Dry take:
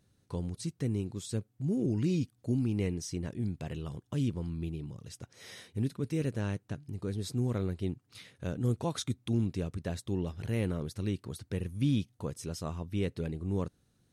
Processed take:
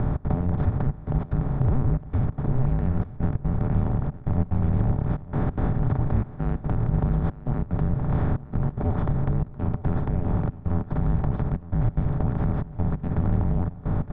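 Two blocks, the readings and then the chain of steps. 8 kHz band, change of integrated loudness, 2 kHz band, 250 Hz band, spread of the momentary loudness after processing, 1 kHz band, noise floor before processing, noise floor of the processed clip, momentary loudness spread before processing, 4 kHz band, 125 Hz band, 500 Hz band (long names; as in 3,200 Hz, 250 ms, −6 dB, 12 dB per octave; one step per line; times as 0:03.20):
below −35 dB, +8.5 dB, +4.0 dB, +5.5 dB, 4 LU, +13.5 dB, −72 dBFS, −41 dBFS, 10 LU, below −10 dB, +10.5 dB, +4.0 dB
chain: compressor on every frequency bin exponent 0.2
low-pass filter 1,500 Hz 24 dB per octave
brickwall limiter −21 dBFS, peak gain reduction 10 dB
harmonic generator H 4 −30 dB, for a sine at −21 dBFS
gate pattern "xx.xxxxxxxx.." 183 BPM −24 dB
frequency shifter −260 Hz
on a send: single-tap delay 912 ms −17.5 dB
on the sum: level +8 dB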